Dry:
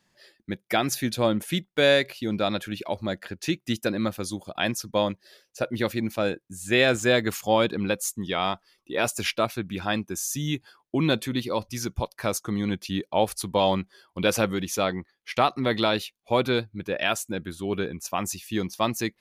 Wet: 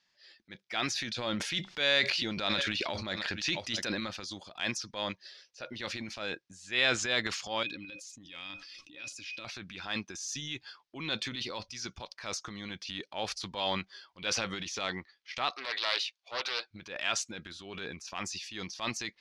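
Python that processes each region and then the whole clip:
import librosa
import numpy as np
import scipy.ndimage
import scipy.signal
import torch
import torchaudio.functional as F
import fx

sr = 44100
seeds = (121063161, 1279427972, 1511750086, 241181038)

y = fx.chain(x, sr, fx.echo_single(ms=663, db=-23.0),
    fx.env_flatten(amount_pct=50), at=(1.24, 4.01))
y = fx.chain(y, sr, fx.tone_stack(knobs='6-0-2'),
    fx.small_body(hz=(300.0, 540.0, 2500.0), ring_ms=95, db=18),
    fx.env_flatten(amount_pct=70), at=(7.63, 9.45))
y = fx.chain(y, sr, fx.highpass(hz=450.0, slope=24),
    fx.doppler_dist(depth_ms=0.33), at=(15.5, 16.71))
y = scipy.signal.sosfilt(scipy.signal.cheby1(3, 1.0, 5300.0, 'lowpass', fs=sr, output='sos'), y)
y = fx.tilt_shelf(y, sr, db=-9.5, hz=970.0)
y = fx.transient(y, sr, attack_db=-7, sustain_db=8)
y = y * librosa.db_to_amplitude(-8.5)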